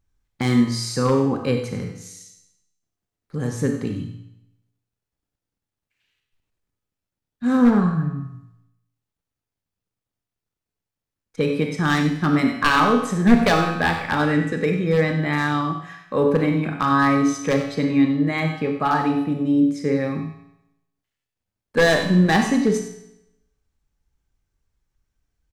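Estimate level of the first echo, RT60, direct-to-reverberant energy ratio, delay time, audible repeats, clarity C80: -11.5 dB, 0.85 s, 3.0 dB, 94 ms, 1, 7.0 dB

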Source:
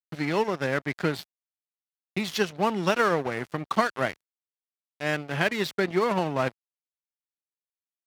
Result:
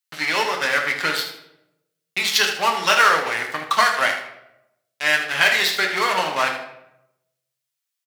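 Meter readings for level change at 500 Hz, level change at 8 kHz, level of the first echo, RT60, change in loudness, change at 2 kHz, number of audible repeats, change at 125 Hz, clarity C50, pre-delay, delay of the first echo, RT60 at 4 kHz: 0.0 dB, +14.5 dB, -10.0 dB, 0.85 s, +8.0 dB, +12.0 dB, 1, -9.5 dB, 6.0 dB, 7 ms, 78 ms, 0.55 s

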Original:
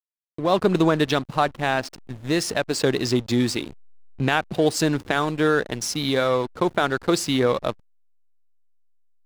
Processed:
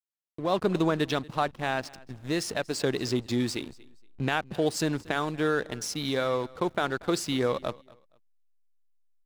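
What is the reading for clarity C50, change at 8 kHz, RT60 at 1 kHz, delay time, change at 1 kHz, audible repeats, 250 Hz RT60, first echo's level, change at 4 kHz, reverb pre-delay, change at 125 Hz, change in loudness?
none, -6.5 dB, none, 0.235 s, -6.5 dB, 2, none, -22.5 dB, -6.5 dB, none, -6.5 dB, -6.5 dB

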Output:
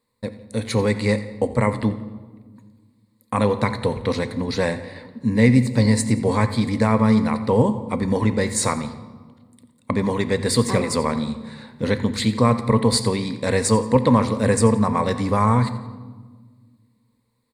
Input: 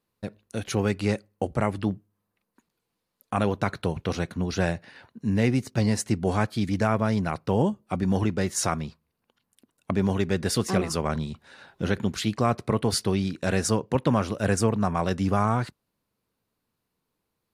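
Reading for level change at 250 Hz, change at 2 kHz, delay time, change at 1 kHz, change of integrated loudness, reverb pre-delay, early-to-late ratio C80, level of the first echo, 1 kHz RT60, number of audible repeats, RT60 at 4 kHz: +6.0 dB, +5.0 dB, 87 ms, +5.5 dB, +6.0 dB, 3 ms, 12.5 dB, -16.5 dB, 1.3 s, 2, 0.95 s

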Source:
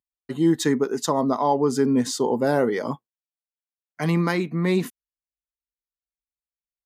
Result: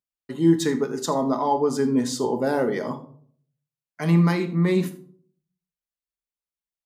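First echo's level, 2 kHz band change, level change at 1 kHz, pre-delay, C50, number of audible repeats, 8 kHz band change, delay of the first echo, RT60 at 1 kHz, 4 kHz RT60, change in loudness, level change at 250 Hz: -19.0 dB, -2.0 dB, -1.0 dB, 5 ms, 12.0 dB, 1, -2.0 dB, 80 ms, 0.50 s, 0.30 s, 0.0 dB, +0.5 dB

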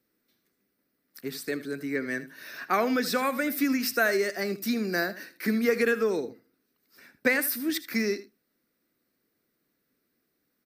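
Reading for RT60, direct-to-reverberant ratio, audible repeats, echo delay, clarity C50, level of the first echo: none, none, 1, 79 ms, none, -15.0 dB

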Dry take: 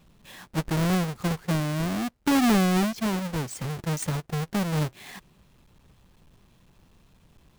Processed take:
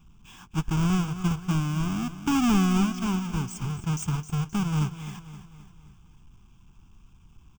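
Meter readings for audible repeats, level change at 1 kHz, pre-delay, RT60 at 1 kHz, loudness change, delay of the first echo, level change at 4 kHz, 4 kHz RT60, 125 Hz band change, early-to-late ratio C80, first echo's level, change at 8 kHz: 4, -2.0 dB, none, none, -0.5 dB, 0.262 s, -3.0 dB, none, +1.5 dB, none, -12.5 dB, -1.5 dB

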